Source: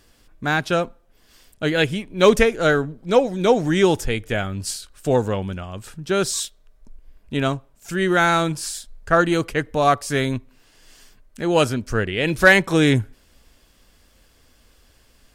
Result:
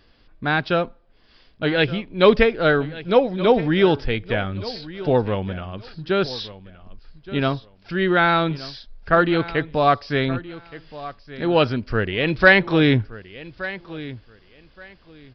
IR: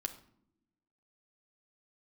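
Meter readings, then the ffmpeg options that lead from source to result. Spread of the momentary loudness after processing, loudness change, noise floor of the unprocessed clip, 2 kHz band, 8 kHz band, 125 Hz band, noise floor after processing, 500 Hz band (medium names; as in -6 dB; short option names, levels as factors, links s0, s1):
19 LU, 0.0 dB, -57 dBFS, 0.0 dB, under -25 dB, 0.0 dB, -55 dBFS, 0.0 dB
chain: -af "aecho=1:1:1172|2344:0.15|0.0299,aresample=11025,aresample=44100"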